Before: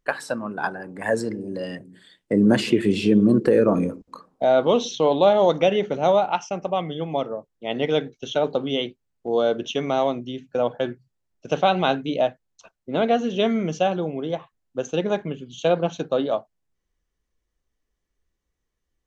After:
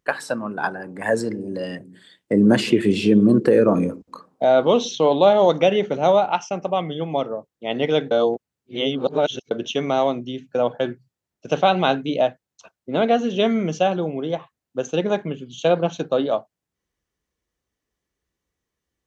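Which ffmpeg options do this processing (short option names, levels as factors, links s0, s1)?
-filter_complex "[0:a]asplit=3[s0][s1][s2];[s0]atrim=end=8.112[s3];[s1]atrim=start=8.108:end=9.512,asetpts=PTS-STARTPTS,areverse[s4];[s2]atrim=start=9.508[s5];[s3][s4]acrossfade=d=0.004:c1=hsin:c2=hsin[s6];[s6][s5]acrossfade=d=0.004:c1=hsin:c2=hsin,highpass=77,volume=1.26"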